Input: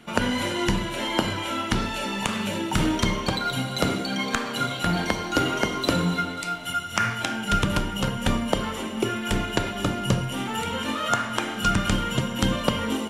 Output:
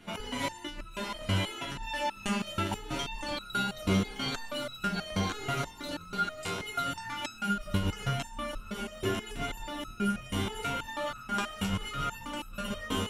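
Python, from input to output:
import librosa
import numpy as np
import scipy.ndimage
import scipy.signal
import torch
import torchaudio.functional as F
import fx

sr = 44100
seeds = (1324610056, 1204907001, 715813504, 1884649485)

p1 = fx.low_shelf(x, sr, hz=74.0, db=8.5)
p2 = fx.over_compress(p1, sr, threshold_db=-23.0, ratio=-0.5)
p3 = p2 + fx.echo_feedback(p2, sr, ms=951, feedback_pct=39, wet_db=-6.5, dry=0)
p4 = fx.resonator_held(p3, sr, hz=6.2, low_hz=96.0, high_hz=1300.0)
y = F.gain(torch.from_numpy(p4), 5.0).numpy()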